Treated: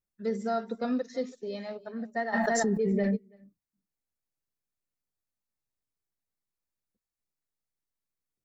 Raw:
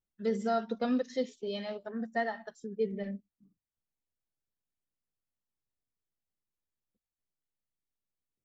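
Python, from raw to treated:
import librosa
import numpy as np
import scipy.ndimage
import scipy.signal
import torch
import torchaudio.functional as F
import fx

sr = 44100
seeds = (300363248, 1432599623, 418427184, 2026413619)

p1 = fx.peak_eq(x, sr, hz=3100.0, db=-11.0, octaves=0.28)
p2 = p1 + fx.echo_single(p1, sr, ms=330, db=-20.0, dry=0)
y = fx.env_flatten(p2, sr, amount_pct=100, at=(2.32, 3.15), fade=0.02)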